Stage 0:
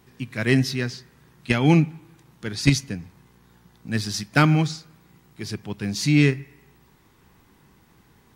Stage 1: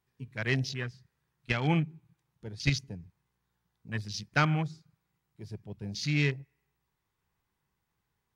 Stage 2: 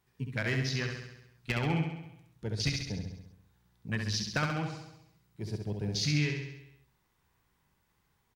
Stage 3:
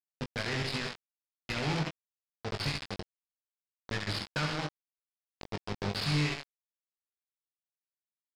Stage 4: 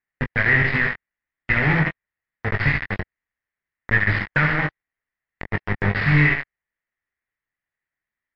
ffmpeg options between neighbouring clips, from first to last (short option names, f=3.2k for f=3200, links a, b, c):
-af "afwtdn=0.0224,equalizer=f=270:t=o:w=1.2:g=-9.5,volume=-6dB"
-af "acompressor=threshold=-35dB:ratio=5,asoftclip=type=hard:threshold=-27dB,aecho=1:1:67|134|201|268|335|402|469|536:0.562|0.332|0.196|0.115|0.0681|0.0402|0.0237|0.014,volume=6dB"
-filter_complex "[0:a]aresample=11025,acrusher=bits=4:mix=0:aa=0.000001,aresample=44100,asoftclip=type=tanh:threshold=-26dB,asplit=2[a][b];[b]adelay=20,volume=-6.5dB[c];[a][c]amix=inputs=2:normalize=0"
-af "lowpass=f=1.9k:t=q:w=7.5,lowshelf=f=140:g=12,volume=7.5dB" -ar 32000 -c:a libmp3lame -b:a 56k